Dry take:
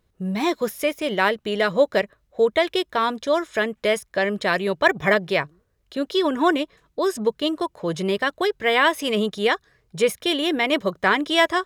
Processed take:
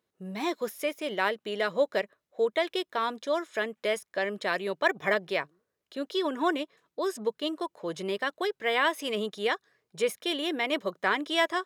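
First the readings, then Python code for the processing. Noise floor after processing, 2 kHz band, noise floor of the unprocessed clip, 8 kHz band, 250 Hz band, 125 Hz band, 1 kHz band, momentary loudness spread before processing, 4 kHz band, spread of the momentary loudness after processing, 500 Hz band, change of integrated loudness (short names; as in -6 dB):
-84 dBFS, -7.5 dB, -68 dBFS, -7.5 dB, -9.5 dB, -13.5 dB, -7.5 dB, 7 LU, -7.5 dB, 8 LU, -8.0 dB, -8.0 dB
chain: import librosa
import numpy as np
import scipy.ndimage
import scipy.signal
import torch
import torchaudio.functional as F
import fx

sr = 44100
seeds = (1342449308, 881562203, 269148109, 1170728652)

y = scipy.signal.sosfilt(scipy.signal.butter(2, 240.0, 'highpass', fs=sr, output='sos'), x)
y = y * librosa.db_to_amplitude(-7.5)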